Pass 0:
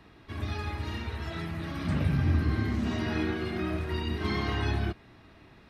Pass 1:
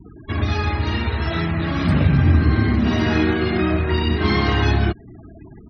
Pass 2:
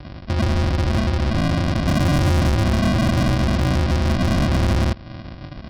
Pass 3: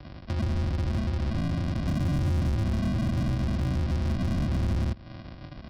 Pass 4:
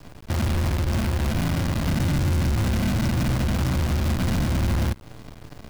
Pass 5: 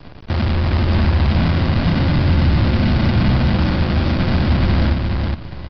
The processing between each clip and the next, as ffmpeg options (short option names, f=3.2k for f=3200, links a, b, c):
-filter_complex "[0:a]afftfilt=real='re*gte(hypot(re,im),0.00447)':imag='im*gte(hypot(re,im),0.00447)':win_size=1024:overlap=0.75,asplit=2[a][b];[b]acompressor=threshold=-35dB:ratio=6,volume=1.5dB[c];[a][c]amix=inputs=2:normalize=0,volume=8.5dB"
-af "aresample=11025,acrusher=samples=25:mix=1:aa=0.000001,aresample=44100,asoftclip=type=tanh:threshold=-21.5dB,volume=6.5dB"
-filter_complex "[0:a]acrossover=split=290[a][b];[b]acompressor=threshold=-29dB:ratio=6[c];[a][c]amix=inputs=2:normalize=0,volume=-7.5dB"
-af "acrusher=bits=6:dc=4:mix=0:aa=0.000001,volume=4dB"
-filter_complex "[0:a]asplit=2[a][b];[b]aecho=0:1:416|832|1248:0.708|0.142|0.0283[c];[a][c]amix=inputs=2:normalize=0,aresample=11025,aresample=44100,volume=5.5dB" -ar 48000 -c:a ac3 -b:a 48k